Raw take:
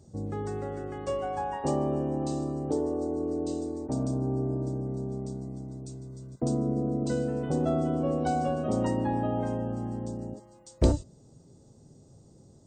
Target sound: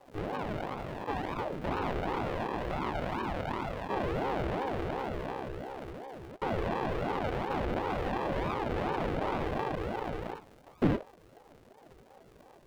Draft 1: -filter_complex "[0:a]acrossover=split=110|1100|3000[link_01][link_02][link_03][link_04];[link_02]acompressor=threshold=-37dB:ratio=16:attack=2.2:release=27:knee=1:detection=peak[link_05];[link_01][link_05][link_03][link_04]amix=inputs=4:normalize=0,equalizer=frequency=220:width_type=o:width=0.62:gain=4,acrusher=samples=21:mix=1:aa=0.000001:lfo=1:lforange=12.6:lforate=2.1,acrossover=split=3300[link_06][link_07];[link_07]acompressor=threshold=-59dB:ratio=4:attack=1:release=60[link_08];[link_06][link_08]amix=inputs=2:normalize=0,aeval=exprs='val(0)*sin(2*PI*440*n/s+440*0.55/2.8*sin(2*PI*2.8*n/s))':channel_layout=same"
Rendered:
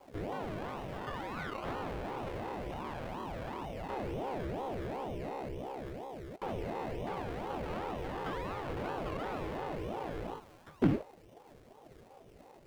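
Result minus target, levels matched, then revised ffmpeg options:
downward compressor: peak gain reduction +8 dB; sample-and-hold swept by an LFO: distortion −8 dB
-filter_complex "[0:a]acrossover=split=110|1100|3000[link_01][link_02][link_03][link_04];[link_02]acompressor=threshold=-28.5dB:ratio=16:attack=2.2:release=27:knee=1:detection=peak[link_05];[link_01][link_05][link_03][link_04]amix=inputs=4:normalize=0,equalizer=frequency=220:width_type=o:width=0.62:gain=4,acrusher=samples=46:mix=1:aa=0.000001:lfo=1:lforange=27.6:lforate=2.1,acrossover=split=3300[link_06][link_07];[link_07]acompressor=threshold=-59dB:ratio=4:attack=1:release=60[link_08];[link_06][link_08]amix=inputs=2:normalize=0,aeval=exprs='val(0)*sin(2*PI*440*n/s+440*0.55/2.8*sin(2*PI*2.8*n/s))':channel_layout=same"

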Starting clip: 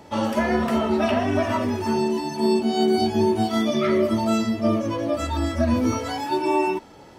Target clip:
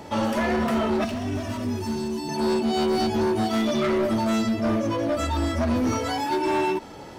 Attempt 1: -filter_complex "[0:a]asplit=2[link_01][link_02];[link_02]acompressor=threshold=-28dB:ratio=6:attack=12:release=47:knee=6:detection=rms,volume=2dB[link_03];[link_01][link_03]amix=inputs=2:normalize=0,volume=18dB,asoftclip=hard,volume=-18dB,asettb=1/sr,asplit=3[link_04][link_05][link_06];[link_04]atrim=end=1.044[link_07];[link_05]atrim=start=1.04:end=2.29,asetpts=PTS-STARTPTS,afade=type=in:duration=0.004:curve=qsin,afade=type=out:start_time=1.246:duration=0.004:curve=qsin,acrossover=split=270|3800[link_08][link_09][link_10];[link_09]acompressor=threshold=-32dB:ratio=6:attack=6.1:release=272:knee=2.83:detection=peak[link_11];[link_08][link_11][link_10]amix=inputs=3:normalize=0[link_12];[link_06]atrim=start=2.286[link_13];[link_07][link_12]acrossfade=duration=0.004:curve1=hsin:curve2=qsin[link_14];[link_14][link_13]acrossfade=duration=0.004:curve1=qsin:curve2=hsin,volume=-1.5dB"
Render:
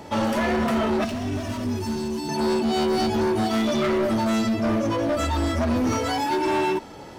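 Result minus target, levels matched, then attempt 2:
downward compressor: peak gain reduction −7 dB
-filter_complex "[0:a]asplit=2[link_01][link_02];[link_02]acompressor=threshold=-36.5dB:ratio=6:attack=12:release=47:knee=6:detection=rms,volume=2dB[link_03];[link_01][link_03]amix=inputs=2:normalize=0,volume=18dB,asoftclip=hard,volume=-18dB,asettb=1/sr,asplit=3[link_04][link_05][link_06];[link_04]atrim=end=1.044[link_07];[link_05]atrim=start=1.04:end=2.29,asetpts=PTS-STARTPTS,afade=type=in:duration=0.004:curve=qsin,afade=type=out:start_time=1.246:duration=0.004:curve=qsin,acrossover=split=270|3800[link_08][link_09][link_10];[link_09]acompressor=threshold=-32dB:ratio=6:attack=6.1:release=272:knee=2.83:detection=peak[link_11];[link_08][link_11][link_10]amix=inputs=3:normalize=0[link_12];[link_06]atrim=start=2.286[link_13];[link_07][link_12]acrossfade=duration=0.004:curve1=hsin:curve2=qsin[link_14];[link_14][link_13]acrossfade=duration=0.004:curve1=qsin:curve2=hsin,volume=-1.5dB"

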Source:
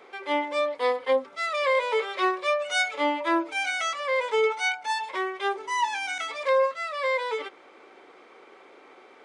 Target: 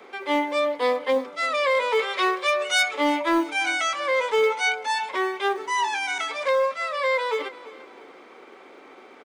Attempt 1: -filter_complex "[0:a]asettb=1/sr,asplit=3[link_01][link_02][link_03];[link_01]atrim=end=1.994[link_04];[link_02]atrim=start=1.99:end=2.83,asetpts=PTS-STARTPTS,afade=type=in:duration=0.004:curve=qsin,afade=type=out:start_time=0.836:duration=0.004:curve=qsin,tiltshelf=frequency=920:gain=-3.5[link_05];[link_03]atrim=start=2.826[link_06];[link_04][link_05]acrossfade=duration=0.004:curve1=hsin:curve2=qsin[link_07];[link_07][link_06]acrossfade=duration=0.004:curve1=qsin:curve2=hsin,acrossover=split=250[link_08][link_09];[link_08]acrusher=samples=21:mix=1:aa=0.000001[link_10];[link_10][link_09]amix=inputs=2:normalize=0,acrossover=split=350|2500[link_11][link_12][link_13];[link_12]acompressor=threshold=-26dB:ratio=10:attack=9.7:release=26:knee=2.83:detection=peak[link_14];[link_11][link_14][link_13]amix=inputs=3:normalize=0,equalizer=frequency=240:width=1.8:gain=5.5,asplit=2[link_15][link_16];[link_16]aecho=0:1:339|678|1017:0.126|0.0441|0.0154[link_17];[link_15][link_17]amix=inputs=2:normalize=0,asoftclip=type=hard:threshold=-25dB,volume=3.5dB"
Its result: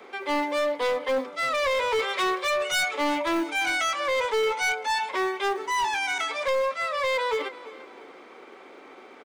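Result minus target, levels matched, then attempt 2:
hard clipping: distortion +19 dB
-filter_complex "[0:a]asettb=1/sr,asplit=3[link_01][link_02][link_03];[link_01]atrim=end=1.994[link_04];[link_02]atrim=start=1.99:end=2.83,asetpts=PTS-STARTPTS,afade=type=in:duration=0.004:curve=qsin,afade=type=out:start_time=0.836:duration=0.004:curve=qsin,tiltshelf=frequency=920:gain=-3.5[link_05];[link_03]atrim=start=2.826[link_06];[link_04][link_05]acrossfade=duration=0.004:curve1=hsin:curve2=qsin[link_07];[link_07][link_06]acrossfade=duration=0.004:curve1=qsin:curve2=hsin,acrossover=split=250[link_08][link_09];[link_08]acrusher=samples=21:mix=1:aa=0.000001[link_10];[link_10][link_09]amix=inputs=2:normalize=0,acrossover=split=350|2500[link_11][link_12][link_13];[link_12]acompressor=threshold=-26dB:ratio=10:attack=9.7:release=26:knee=2.83:detection=peak[link_14];[link_11][link_14][link_13]amix=inputs=3:normalize=0,equalizer=frequency=240:width=1.8:gain=5.5,asplit=2[link_15][link_16];[link_16]aecho=0:1:339|678|1017:0.126|0.0441|0.0154[link_17];[link_15][link_17]amix=inputs=2:normalize=0,asoftclip=type=hard:threshold=-17dB,volume=3.5dB"

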